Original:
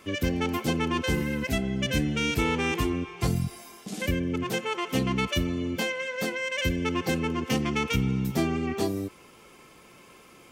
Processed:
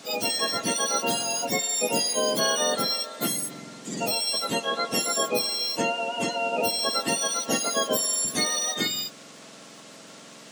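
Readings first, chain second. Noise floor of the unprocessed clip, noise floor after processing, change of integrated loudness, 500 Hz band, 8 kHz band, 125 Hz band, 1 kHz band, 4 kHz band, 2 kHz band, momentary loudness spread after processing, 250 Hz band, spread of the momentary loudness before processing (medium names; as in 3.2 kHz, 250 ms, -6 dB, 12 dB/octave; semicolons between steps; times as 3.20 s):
-53 dBFS, -47 dBFS, +3.0 dB, +3.0 dB, +15.5 dB, -13.5 dB, +4.5 dB, +8.0 dB, -0.5 dB, 16 LU, -6.5 dB, 4 LU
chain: spectrum inverted on a logarithmic axis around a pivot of 1.2 kHz; high-pass 210 Hz 24 dB/octave; band noise 560–8100 Hz -54 dBFS; trim +4.5 dB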